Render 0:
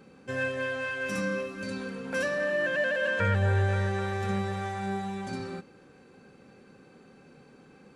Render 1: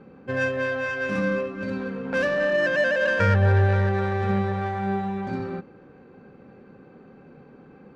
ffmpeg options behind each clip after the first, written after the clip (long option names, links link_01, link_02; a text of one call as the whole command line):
ffmpeg -i in.wav -af "adynamicsmooth=sensitivity=2:basefreq=1900,volume=6.5dB" out.wav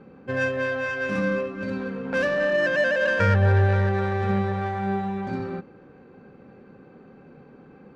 ffmpeg -i in.wav -af anull out.wav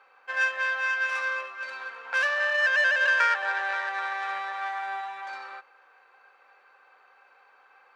ffmpeg -i in.wav -af "highpass=frequency=880:width=0.5412,highpass=frequency=880:width=1.3066,volume=3dB" out.wav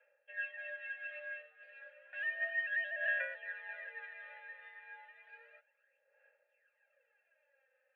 ffmpeg -i in.wav -filter_complex "[0:a]highpass=frequency=320:width_type=q:width=0.5412,highpass=frequency=320:width_type=q:width=1.307,lowpass=frequency=3500:width_type=q:width=0.5176,lowpass=frequency=3500:width_type=q:width=0.7071,lowpass=frequency=3500:width_type=q:width=1.932,afreqshift=71,aphaser=in_gain=1:out_gain=1:delay=3.9:decay=0.61:speed=0.32:type=sinusoidal,asplit=3[link_01][link_02][link_03];[link_01]bandpass=frequency=530:width_type=q:width=8,volume=0dB[link_04];[link_02]bandpass=frequency=1840:width_type=q:width=8,volume=-6dB[link_05];[link_03]bandpass=frequency=2480:width_type=q:width=8,volume=-9dB[link_06];[link_04][link_05][link_06]amix=inputs=3:normalize=0,volume=-7dB" out.wav